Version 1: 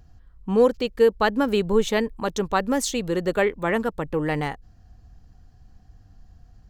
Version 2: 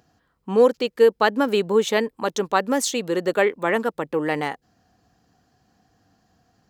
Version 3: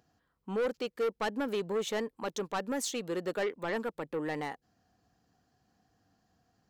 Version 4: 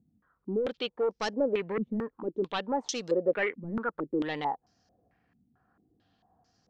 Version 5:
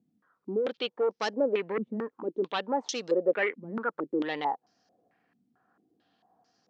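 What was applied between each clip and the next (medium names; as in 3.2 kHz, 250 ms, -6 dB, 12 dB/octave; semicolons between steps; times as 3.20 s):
high-pass 250 Hz 12 dB/octave; trim +2.5 dB
saturation -17.5 dBFS, distortion -9 dB; trim -9 dB
step-sequenced low-pass 4.5 Hz 220–5500 Hz
band-pass 240–6300 Hz; trim +1.5 dB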